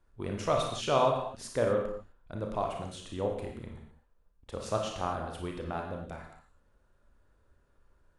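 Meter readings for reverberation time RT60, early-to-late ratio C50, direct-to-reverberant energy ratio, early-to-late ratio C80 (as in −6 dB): non-exponential decay, 3.5 dB, 1.0 dB, 6.5 dB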